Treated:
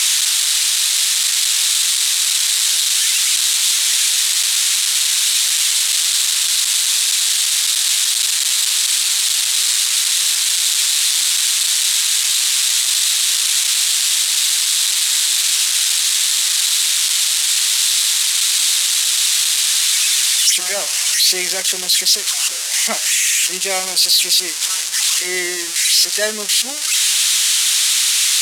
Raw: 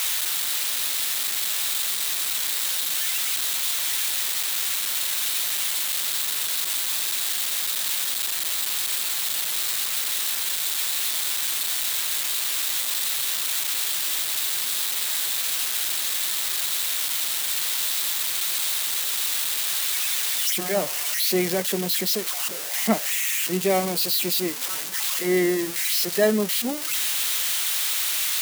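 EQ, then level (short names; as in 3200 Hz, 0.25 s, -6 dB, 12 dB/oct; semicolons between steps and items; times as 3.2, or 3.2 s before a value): weighting filter ITU-R 468; +2.0 dB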